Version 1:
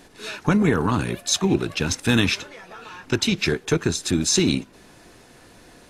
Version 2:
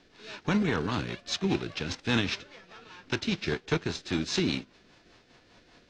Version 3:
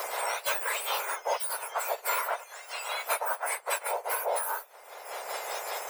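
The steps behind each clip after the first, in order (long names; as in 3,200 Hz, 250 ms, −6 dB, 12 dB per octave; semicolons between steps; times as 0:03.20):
spectral envelope flattened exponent 0.6; low-pass filter 5,200 Hz 24 dB per octave; rotating-speaker cabinet horn 5 Hz; level −6.5 dB
frequency axis turned over on the octave scale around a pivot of 1,900 Hz; low shelf with overshoot 310 Hz −11.5 dB, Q 3; multiband upward and downward compressor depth 100%; level +2.5 dB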